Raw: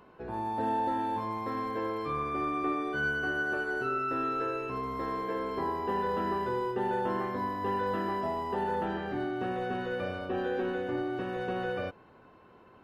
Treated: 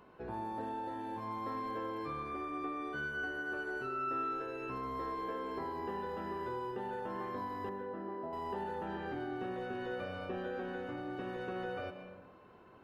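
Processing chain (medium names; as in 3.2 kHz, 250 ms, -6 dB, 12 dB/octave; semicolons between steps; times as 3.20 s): compression 4:1, threshold -34 dBFS, peak gain reduction 7 dB; 7.69–8.33 s: band-pass filter 340 Hz, Q 0.53; algorithmic reverb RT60 1.1 s, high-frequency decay 0.45×, pre-delay 85 ms, DRR 8 dB; trim -3 dB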